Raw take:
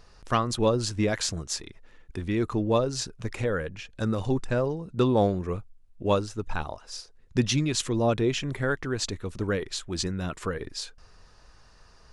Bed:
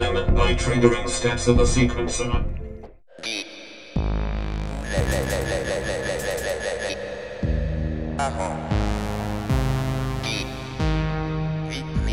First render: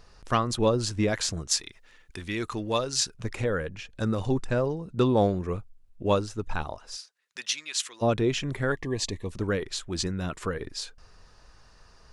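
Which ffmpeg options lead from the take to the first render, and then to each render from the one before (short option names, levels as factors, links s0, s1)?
-filter_complex "[0:a]asettb=1/sr,asplit=3[s0][s1][s2];[s0]atrim=end=1.514[s3];[s1]atrim=start=1.51:end=3.15,asetpts=PTS-STARTPTS,afade=t=in:d=0.004:c=qsin,afade=t=out:st=1.636:d=0.004:c=qsin,tiltshelf=f=1100:g=-7[s4];[s2]atrim=start=3.146[s5];[s3][s4]acrossfade=d=0.004:c1=hsin:c2=qsin[s6];[s6][s5]acrossfade=d=0.004:c1=qsin:c2=hsin,asplit=3[s7][s8][s9];[s7]afade=t=out:st=6.95:d=0.02[s10];[s8]highpass=1500,afade=t=in:st=6.95:d=0.02,afade=t=out:st=8.01:d=0.02[s11];[s9]afade=t=in:st=8.01:d=0.02[s12];[s10][s11][s12]amix=inputs=3:normalize=0,asettb=1/sr,asplit=3[s13][s14][s15];[s13]atrim=end=8.724[s16];[s14]atrim=start=8.72:end=9.32,asetpts=PTS-STARTPTS,afade=t=in:d=0.004:c=qsin,afade=t=out:st=0.596:d=0.004:c=qsin,asuperstop=centerf=1400:order=12:qfactor=3[s17];[s15]atrim=start=9.316[s18];[s16][s17]acrossfade=d=0.004:c1=hsin:c2=qsin[s19];[s19][s18]acrossfade=d=0.004:c1=qsin:c2=hsin"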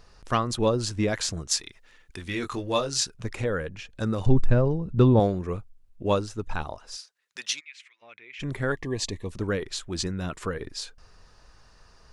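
-filter_complex "[0:a]asettb=1/sr,asplit=3[s0][s1][s2];[s0]atrim=end=2.244[s3];[s1]atrim=start=2.24:end=2.98,asetpts=PTS-STARTPTS,afade=t=in:d=0.004:c=qsin,afade=t=out:st=0.736:d=0.004:c=qsin,asplit=2[s4][s5];[s5]adelay=21,volume=0.562[s6];[s4][s6]amix=inputs=2:normalize=0,atrim=end_sample=32634[s7];[s2]atrim=start=2.976[s8];[s3][s7]acrossfade=d=0.004:c1=hsin:c2=qsin[s9];[s9][s8]acrossfade=d=0.004:c1=qsin:c2=hsin,asettb=1/sr,asplit=3[s10][s11][s12];[s10]atrim=end=4.264[s13];[s11]atrim=start=4.26:end=5.2,asetpts=PTS-STARTPTS,afade=t=in:d=0.004:c=qsin,afade=t=out:st=0.936:d=0.004:c=qsin,aemphasis=mode=reproduction:type=bsi[s14];[s12]atrim=start=5.196[s15];[s13][s14]acrossfade=d=0.004:c1=hsin:c2=qsin[s16];[s16][s15]acrossfade=d=0.004:c1=qsin:c2=hsin,asplit=3[s17][s18][s19];[s17]afade=t=out:st=7.59:d=0.02[s20];[s18]bandpass=f=2200:t=q:w=7.4,afade=t=in:st=7.59:d=0.02,afade=t=out:st=8.39:d=0.02[s21];[s19]afade=t=in:st=8.39:d=0.02[s22];[s20][s21][s22]amix=inputs=3:normalize=0"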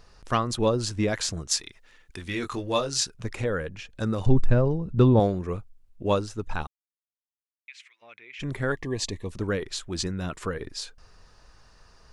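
-filter_complex "[0:a]asplit=3[s0][s1][s2];[s0]atrim=end=6.67,asetpts=PTS-STARTPTS,afade=t=out:st=6.666:d=0.004:c=hsin[s3];[s1]atrim=start=6.67:end=7.68,asetpts=PTS-STARTPTS,volume=0[s4];[s2]atrim=start=7.68,asetpts=PTS-STARTPTS,afade=t=in:d=0.004:c=hsin[s5];[s3][s4][s5]concat=n=3:v=0:a=1"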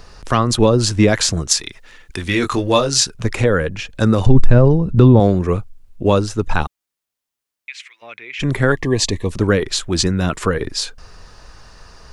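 -filter_complex "[0:a]acrossover=split=290[s0][s1];[s1]acompressor=threshold=0.0398:ratio=1.5[s2];[s0][s2]amix=inputs=2:normalize=0,alimiter=level_in=4.47:limit=0.891:release=50:level=0:latency=1"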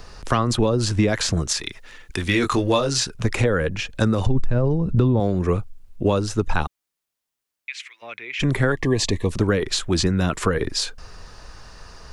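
-filter_complex "[0:a]acrossover=split=490|3200[s0][s1][s2];[s2]alimiter=limit=0.2:level=0:latency=1:release=132[s3];[s0][s1][s3]amix=inputs=3:normalize=0,acompressor=threshold=0.178:ratio=6"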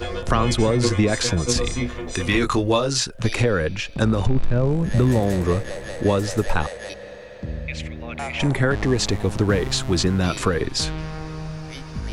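-filter_complex "[1:a]volume=0.473[s0];[0:a][s0]amix=inputs=2:normalize=0"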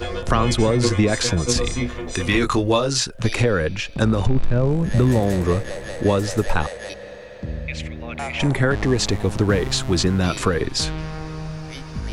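-af "volume=1.12"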